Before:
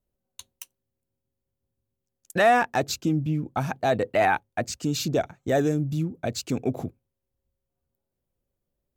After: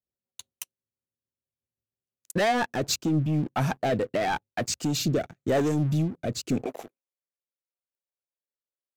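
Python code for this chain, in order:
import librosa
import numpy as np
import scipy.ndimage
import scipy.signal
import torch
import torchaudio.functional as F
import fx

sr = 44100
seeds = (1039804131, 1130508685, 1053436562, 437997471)

y = fx.highpass(x, sr, hz=fx.steps((0.0, 76.0), (6.66, 620.0)), slope=12)
y = fx.leveller(y, sr, passes=3)
y = fx.rotary_switch(y, sr, hz=6.0, then_hz=0.9, switch_at_s=2.35)
y = F.gain(torch.from_numpy(y), -6.5).numpy()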